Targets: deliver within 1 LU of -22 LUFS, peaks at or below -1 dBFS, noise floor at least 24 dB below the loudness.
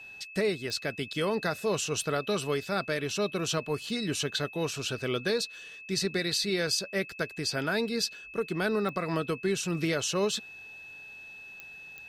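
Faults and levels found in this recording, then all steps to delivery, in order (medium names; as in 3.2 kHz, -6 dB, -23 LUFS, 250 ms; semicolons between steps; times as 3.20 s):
clicks found 4; steady tone 2.6 kHz; tone level -44 dBFS; loudness -30.5 LUFS; peak level -17.0 dBFS; loudness target -22.0 LUFS
-> de-click; band-stop 2.6 kHz, Q 30; trim +8.5 dB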